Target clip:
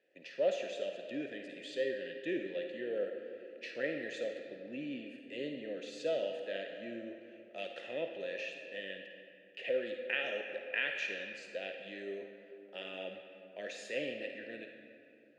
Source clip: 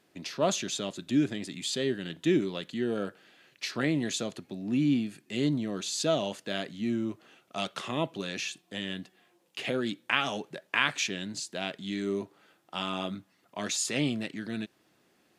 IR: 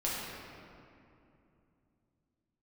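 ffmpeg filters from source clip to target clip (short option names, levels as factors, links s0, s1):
-filter_complex "[0:a]asplit=3[s0][s1][s2];[s0]bandpass=f=530:t=q:w=8,volume=1[s3];[s1]bandpass=f=1840:t=q:w=8,volume=0.501[s4];[s2]bandpass=f=2480:t=q:w=8,volume=0.355[s5];[s3][s4][s5]amix=inputs=3:normalize=0,asplit=2[s6][s7];[1:a]atrim=start_sample=2205,lowshelf=f=350:g=-10,adelay=52[s8];[s7][s8]afir=irnorm=-1:irlink=0,volume=0.355[s9];[s6][s9]amix=inputs=2:normalize=0,volume=1.5"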